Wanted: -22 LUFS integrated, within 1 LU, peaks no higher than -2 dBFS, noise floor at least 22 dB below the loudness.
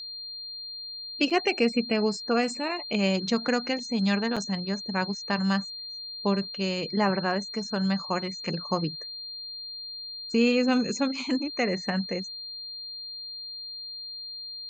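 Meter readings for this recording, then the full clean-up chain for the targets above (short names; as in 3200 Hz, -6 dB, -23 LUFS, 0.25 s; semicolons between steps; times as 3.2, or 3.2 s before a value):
dropouts 2; longest dropout 5.8 ms; steady tone 4200 Hz; tone level -36 dBFS; loudness -28.5 LUFS; peak -10.5 dBFS; loudness target -22.0 LUFS
-> interpolate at 1.3/4.36, 5.8 ms; notch 4200 Hz, Q 30; gain +6.5 dB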